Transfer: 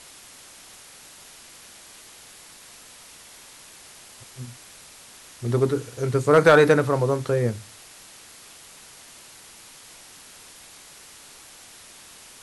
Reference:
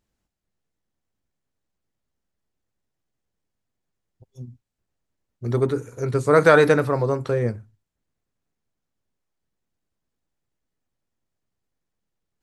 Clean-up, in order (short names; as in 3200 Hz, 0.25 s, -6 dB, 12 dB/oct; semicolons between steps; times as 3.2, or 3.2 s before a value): clip repair -6.5 dBFS; noise print and reduce 30 dB